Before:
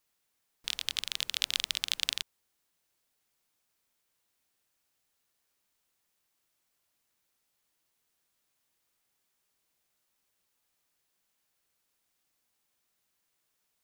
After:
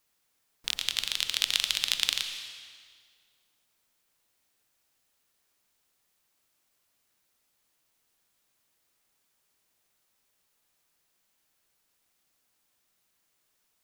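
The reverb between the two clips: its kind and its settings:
comb and all-pass reverb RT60 1.8 s, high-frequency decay 0.95×, pre-delay 75 ms, DRR 7 dB
level +3.5 dB

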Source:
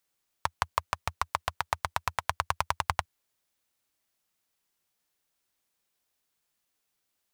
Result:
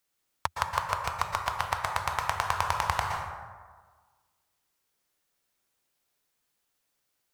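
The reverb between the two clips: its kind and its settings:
dense smooth reverb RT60 1.5 s, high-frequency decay 0.45×, pre-delay 105 ms, DRR 1 dB

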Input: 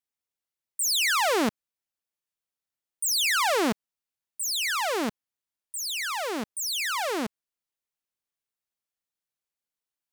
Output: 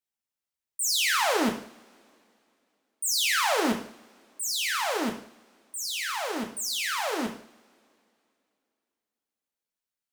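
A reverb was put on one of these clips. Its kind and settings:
coupled-rooms reverb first 0.52 s, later 2.8 s, from −27 dB, DRR 2 dB
level −3 dB

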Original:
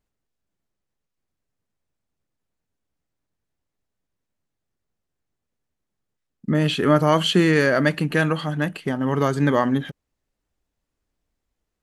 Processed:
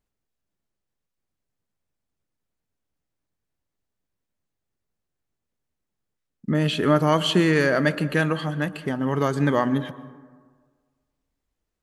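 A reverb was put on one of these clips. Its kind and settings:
dense smooth reverb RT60 1.6 s, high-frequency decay 0.35×, pre-delay 105 ms, DRR 16 dB
level −2 dB

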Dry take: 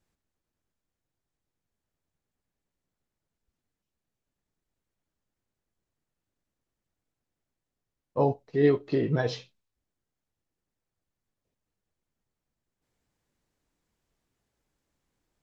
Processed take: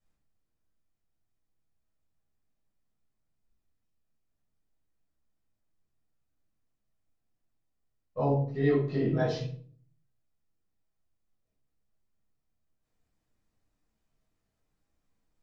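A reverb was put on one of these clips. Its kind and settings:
rectangular room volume 490 cubic metres, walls furnished, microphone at 6.1 metres
level −12 dB

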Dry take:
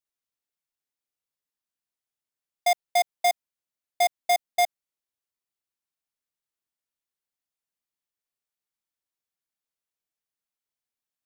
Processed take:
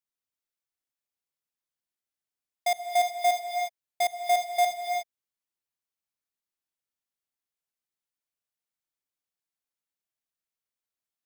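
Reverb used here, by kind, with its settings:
reverb whose tail is shaped and stops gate 390 ms rising, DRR 4 dB
level −4 dB

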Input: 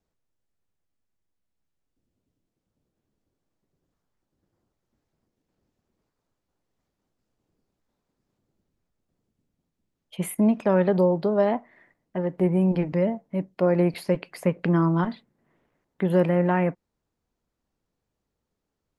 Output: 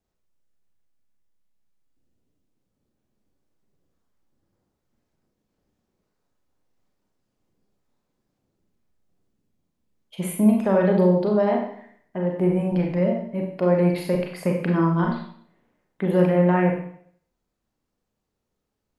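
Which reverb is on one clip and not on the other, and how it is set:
four-comb reverb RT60 0.6 s, combs from 30 ms, DRR 0.5 dB
level −1 dB

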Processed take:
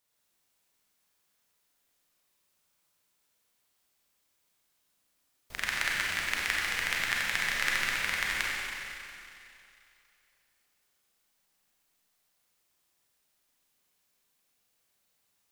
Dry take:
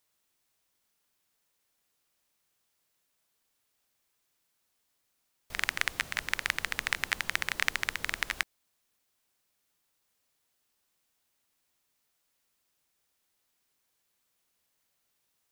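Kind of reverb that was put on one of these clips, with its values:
four-comb reverb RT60 2.7 s, combs from 31 ms, DRR −4.5 dB
level −3.5 dB

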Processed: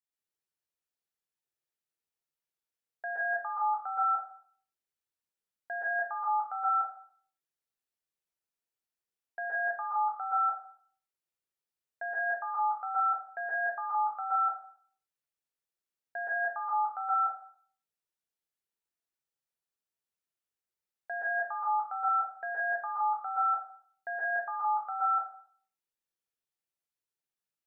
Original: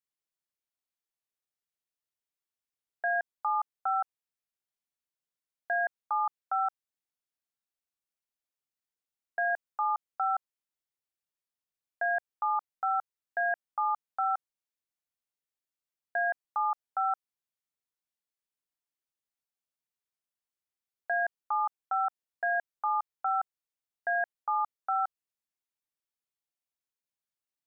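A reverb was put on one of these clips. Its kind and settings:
dense smooth reverb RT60 0.52 s, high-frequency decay 0.75×, pre-delay 110 ms, DRR −6 dB
level −7.5 dB

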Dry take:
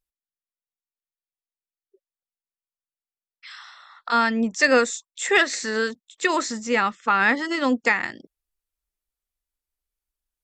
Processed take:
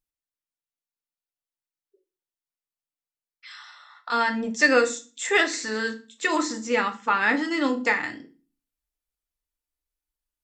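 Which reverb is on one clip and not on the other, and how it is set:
feedback delay network reverb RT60 0.34 s, low-frequency decay 1.5×, high-frequency decay 0.95×, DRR 4 dB
level −3.5 dB

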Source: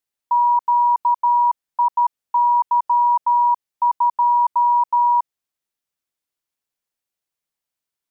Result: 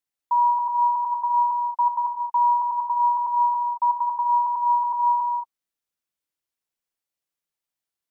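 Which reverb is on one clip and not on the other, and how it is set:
reverb whose tail is shaped and stops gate 250 ms flat, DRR 4 dB
level −4.5 dB

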